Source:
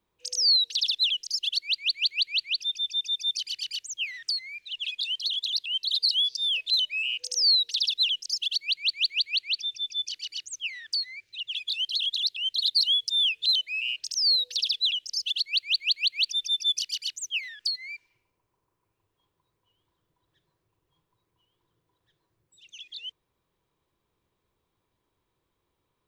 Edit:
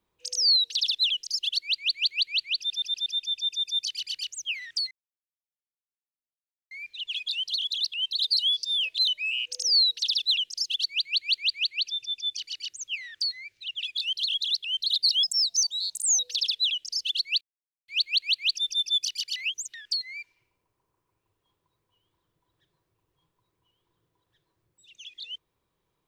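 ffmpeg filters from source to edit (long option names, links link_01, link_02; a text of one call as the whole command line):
ffmpeg -i in.wav -filter_complex "[0:a]asplit=11[link_01][link_02][link_03][link_04][link_05][link_06][link_07][link_08][link_09][link_10][link_11];[link_01]atrim=end=2.702[link_12];[link_02]atrim=start=2.578:end=2.702[link_13];[link_03]atrim=start=2.578:end=2.702[link_14];[link_04]atrim=start=2.578:end=2.702[link_15];[link_05]atrim=start=2.578:end=4.43,asetpts=PTS-STARTPTS,afade=type=out:start_time=1.848:duration=0.004:curve=hsin,apad=pad_dur=1.8[link_16];[link_06]atrim=start=4.43:end=12.954,asetpts=PTS-STARTPTS,afade=type=in:duration=0.004:curve=hsin[link_17];[link_07]atrim=start=12.95:end=14.4,asetpts=PTS-STARTPTS,asetrate=66591,aresample=44100[link_18];[link_08]atrim=start=14.396:end=15.62,asetpts=PTS-STARTPTS,afade=type=out:start_time=1.22:duration=0.004:curve=hsin,apad=pad_dur=0.47[link_19];[link_09]atrim=start=15.62:end=17.102,asetpts=PTS-STARTPTS,afade=type=in:duration=0.004:curve=hsin[link_20];[link_10]atrim=start=17.098:end=17.482,asetpts=PTS-STARTPTS,areverse[link_21];[link_11]atrim=start=17.478[link_22];[link_12][link_13]acrossfade=duration=0.004:curve1=hsin:curve2=hsin[link_23];[link_23][link_14]acrossfade=duration=0.004:curve1=hsin:curve2=hsin[link_24];[link_24][link_15]acrossfade=duration=0.004:curve1=hsin:curve2=hsin[link_25];[link_16][link_17]concat=n=2:v=0:a=1[link_26];[link_25][link_26]acrossfade=duration=0.004:curve1=hsin:curve2=hsin[link_27];[link_27][link_18]acrossfade=duration=0.004:curve1=hsin:curve2=hsin[link_28];[link_19][link_20]concat=n=2:v=0:a=1[link_29];[link_28][link_29]acrossfade=duration=0.004:curve1=hsin:curve2=hsin[link_30];[link_30][link_21]acrossfade=duration=0.004:curve1=hsin:curve2=hsin[link_31];[link_31][link_22]acrossfade=duration=0.004:curve1=hsin:curve2=hsin" out.wav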